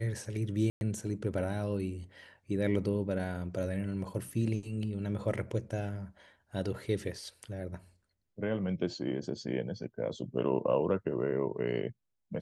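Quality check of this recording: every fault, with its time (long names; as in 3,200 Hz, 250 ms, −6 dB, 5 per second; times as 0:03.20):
0:00.70–0:00.81: drop-out 111 ms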